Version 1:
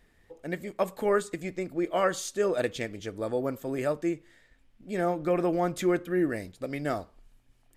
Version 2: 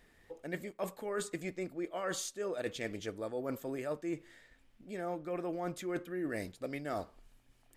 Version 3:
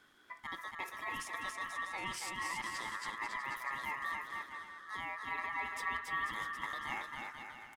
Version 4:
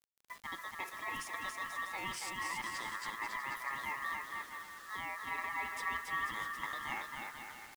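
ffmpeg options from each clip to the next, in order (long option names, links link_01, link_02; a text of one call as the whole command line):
ffmpeg -i in.wav -af "lowshelf=frequency=170:gain=-5.5,areverse,acompressor=threshold=-35dB:ratio=10,areverse,volume=1dB" out.wav
ffmpeg -i in.wav -af "alimiter=level_in=7dB:limit=-24dB:level=0:latency=1:release=121,volume=-7dB,aeval=exprs='val(0)*sin(2*PI*1500*n/s)':channel_layout=same,aecho=1:1:280|490|647.5|765.6|854.2:0.631|0.398|0.251|0.158|0.1,volume=1.5dB" out.wav
ffmpeg -i in.wav -af "acrusher=bits=8:mix=0:aa=0.000001" out.wav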